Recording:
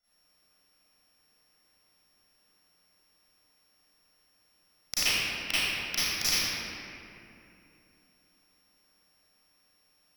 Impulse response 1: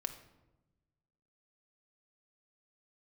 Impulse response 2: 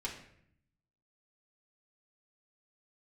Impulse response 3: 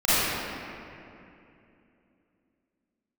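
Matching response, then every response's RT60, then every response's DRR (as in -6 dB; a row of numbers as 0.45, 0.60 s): 3; 1.1, 0.65, 2.8 s; 6.5, -4.5, -15.5 dB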